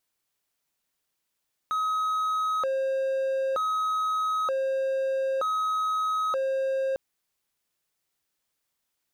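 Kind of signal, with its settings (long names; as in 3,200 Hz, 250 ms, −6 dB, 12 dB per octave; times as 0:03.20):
siren hi-lo 534–1,270 Hz 0.54 per second triangle −22 dBFS 5.25 s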